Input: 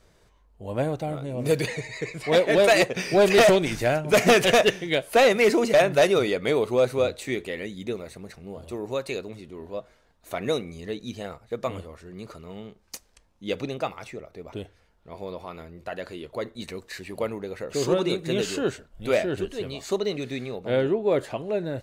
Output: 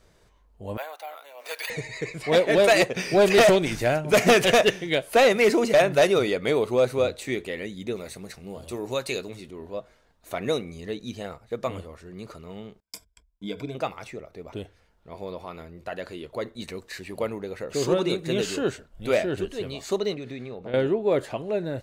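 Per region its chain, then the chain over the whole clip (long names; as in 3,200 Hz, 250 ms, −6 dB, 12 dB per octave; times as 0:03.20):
0:00.77–0:01.70: high-pass filter 780 Hz 24 dB per octave + bad sample-rate conversion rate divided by 3×, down filtered, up hold
0:07.96–0:09.51: high-shelf EQ 2,600 Hz +7.5 dB + double-tracking delay 16 ms −13.5 dB
0:12.80–0:13.75: noise gate −58 dBFS, range −30 dB + downward compressor 2.5 to 1, threshold −36 dBFS + EQ curve with evenly spaced ripples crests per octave 1.7, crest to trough 16 dB
0:20.14–0:20.74: high-shelf EQ 4,900 Hz −11.5 dB + downward compressor 5 to 1, threshold −32 dBFS
whole clip: no processing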